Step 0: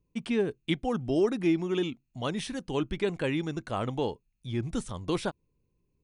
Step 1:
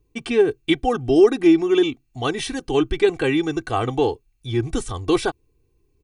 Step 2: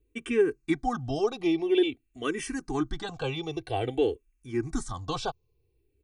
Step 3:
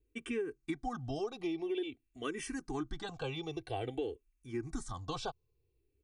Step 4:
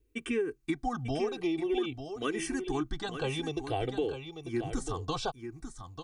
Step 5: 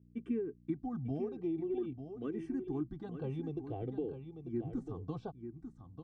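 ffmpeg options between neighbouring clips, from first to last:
-af "aecho=1:1:2.6:0.81,volume=7.5dB"
-filter_complex "[0:a]asplit=2[a][b];[b]afreqshift=-0.5[c];[a][c]amix=inputs=2:normalize=1,volume=-4.5dB"
-af "acompressor=threshold=-27dB:ratio=6,volume=-6dB"
-af "aecho=1:1:894:0.355,volume=5.5dB"
-af "aeval=exprs='val(0)+0.00178*(sin(2*PI*60*n/s)+sin(2*PI*2*60*n/s)/2+sin(2*PI*3*60*n/s)/3+sin(2*PI*4*60*n/s)/4+sin(2*PI*5*60*n/s)/5)':c=same,bandpass=f=190:t=q:w=1.2:csg=0"

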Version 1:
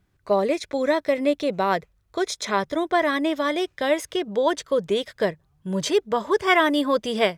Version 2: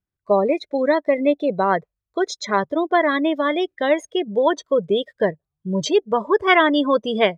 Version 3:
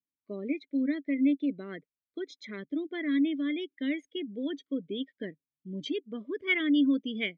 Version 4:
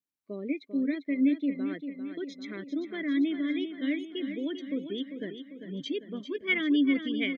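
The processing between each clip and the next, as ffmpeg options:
-af "afftdn=nr=24:nf=-29,volume=3.5dB"
-filter_complex "[0:a]asplit=3[a][b][c];[a]bandpass=f=270:t=q:w=8,volume=0dB[d];[b]bandpass=f=2.29k:t=q:w=8,volume=-6dB[e];[c]bandpass=f=3.01k:t=q:w=8,volume=-9dB[f];[d][e][f]amix=inputs=3:normalize=0"
-af "aecho=1:1:396|792|1188|1584|1980|2376:0.355|0.192|0.103|0.0559|0.0302|0.0163"

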